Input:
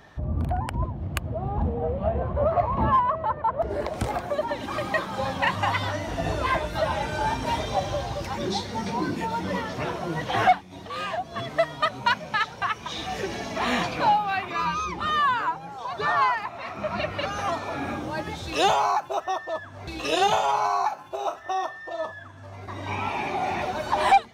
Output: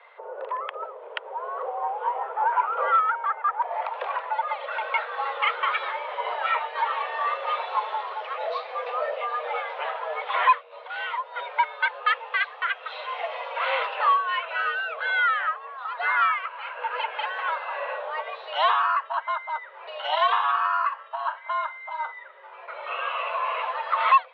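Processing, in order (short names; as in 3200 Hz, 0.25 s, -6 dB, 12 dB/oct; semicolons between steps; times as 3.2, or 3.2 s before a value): mistuned SSB +290 Hz 200–3100 Hz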